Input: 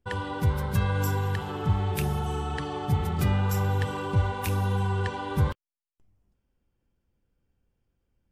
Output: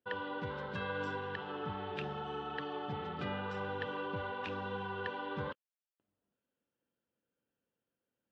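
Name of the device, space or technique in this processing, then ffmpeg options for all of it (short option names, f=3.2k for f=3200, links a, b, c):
phone earpiece: -filter_complex "[0:a]asettb=1/sr,asplit=3[a][b][c];[a]atrim=end=0.474[d];[b]atrim=start=0.47:end=1.16,asetpts=PTS-STARTPTS,afade=t=in:d=0.004:c=qsin,afade=t=out:st=0.686:d=0.004:c=qsin,highshelf=f=6.4k:g=6.5[e];[c]atrim=start=1.156[f];[d][e]acrossfade=d=0.004:c1=hsin:c2=qsin[g];[g][f]acrossfade=d=0.004:c1=qsin:c2=hsin,highpass=340,equalizer=f=370:t=q:w=4:g=-6,equalizer=f=780:t=q:w=4:g=-7,equalizer=f=1.1k:t=q:w=4:g=-5,equalizer=f=2.2k:t=q:w=4:g=-9,lowpass=f=3.2k:w=0.5412,lowpass=f=3.2k:w=1.3066,volume=-2dB"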